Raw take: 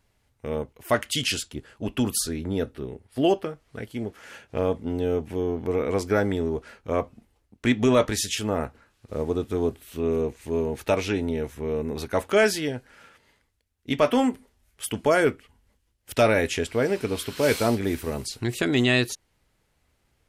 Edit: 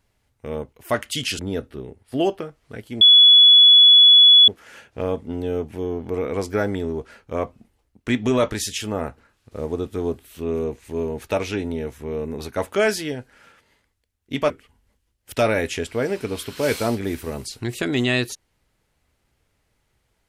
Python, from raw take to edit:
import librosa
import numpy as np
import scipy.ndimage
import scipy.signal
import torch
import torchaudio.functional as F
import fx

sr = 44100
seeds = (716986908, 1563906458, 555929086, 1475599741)

y = fx.edit(x, sr, fx.cut(start_s=1.39, length_s=1.04),
    fx.insert_tone(at_s=4.05, length_s=1.47, hz=3400.0, db=-7.0),
    fx.cut(start_s=14.07, length_s=1.23), tone=tone)